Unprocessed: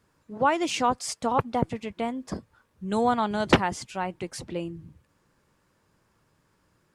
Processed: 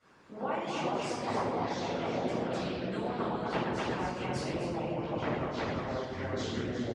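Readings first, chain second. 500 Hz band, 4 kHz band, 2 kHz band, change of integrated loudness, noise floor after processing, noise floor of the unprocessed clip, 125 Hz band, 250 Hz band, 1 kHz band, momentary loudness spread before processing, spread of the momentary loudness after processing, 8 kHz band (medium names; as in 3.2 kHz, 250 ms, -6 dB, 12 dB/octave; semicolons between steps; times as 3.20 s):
-3.0 dB, -6.0 dB, -5.5 dB, -7.0 dB, -45 dBFS, -69 dBFS, -2.0 dB, -4.5 dB, -7.5 dB, 15 LU, 3 LU, -11.0 dB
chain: delay 252 ms -4.5 dB; compression 6:1, threshold -38 dBFS, peak gain reduction 23 dB; high-pass 330 Hz 6 dB/octave; simulated room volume 810 m³, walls mixed, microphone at 7 m; ever faster or slower copies 236 ms, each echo -6 st, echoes 2; distance through air 77 m; gain riding within 3 dB 0.5 s; harmonic-percussive split harmonic -12 dB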